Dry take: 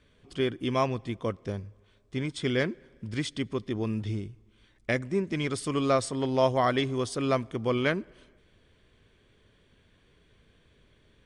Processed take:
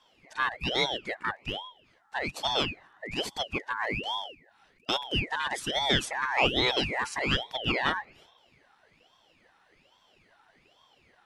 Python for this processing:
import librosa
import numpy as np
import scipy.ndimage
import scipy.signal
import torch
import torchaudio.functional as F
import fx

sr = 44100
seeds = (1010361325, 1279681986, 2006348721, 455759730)

y = fx.band_swap(x, sr, width_hz=1000)
y = fx.ring_lfo(y, sr, carrier_hz=1200.0, swing_pct=80, hz=1.2)
y = y * 10.0 ** (1.5 / 20.0)